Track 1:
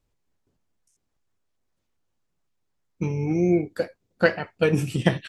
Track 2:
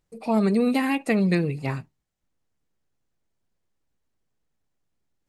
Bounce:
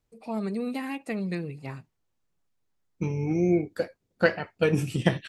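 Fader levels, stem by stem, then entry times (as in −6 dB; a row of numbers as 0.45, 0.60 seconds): −2.5, −9.5 decibels; 0.00, 0.00 seconds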